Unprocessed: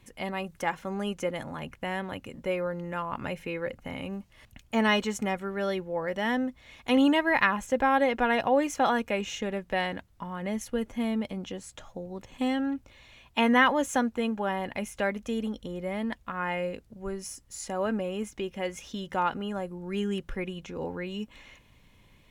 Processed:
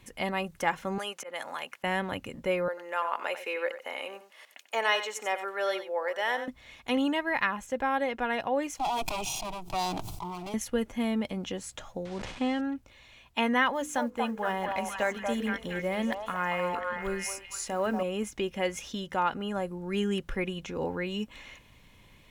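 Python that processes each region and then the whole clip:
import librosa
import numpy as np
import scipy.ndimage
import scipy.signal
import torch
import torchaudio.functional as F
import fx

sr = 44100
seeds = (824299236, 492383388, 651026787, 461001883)

y = fx.chain(x, sr, fx.highpass(hz=640.0, slope=12),
    fx.auto_swell(attack_ms=196.0),
    fx.band_squash(depth_pct=70), at=(0.98, 1.84))
y = fx.chain(y, sr, fx.highpass(hz=440.0, slope=24),
    fx.echo_single(ms=93, db=-11.5), at=(2.68, 6.48))
y = fx.chain(y, sr, fx.lower_of_two(delay_ms=1.2),
    fx.fixed_phaser(hz=340.0, stages=8),
    fx.sustainer(db_per_s=25.0), at=(8.77, 10.54))
y = fx.chain(y, sr, fx.delta_mod(bps=64000, step_db=-41.5),
    fx.air_absorb(metres=98.0),
    fx.sustainer(db_per_s=42.0), at=(12.05, 12.61))
y = fx.chain(y, sr, fx.block_float(bits=7),
    fx.hum_notches(base_hz=50, count=10),
    fx.echo_stepped(ms=235, hz=840.0, octaves=0.7, feedback_pct=70, wet_db=-1), at=(13.73, 18.03))
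y = fx.low_shelf(y, sr, hz=500.0, db=-3.0)
y = fx.rider(y, sr, range_db=4, speed_s=0.5)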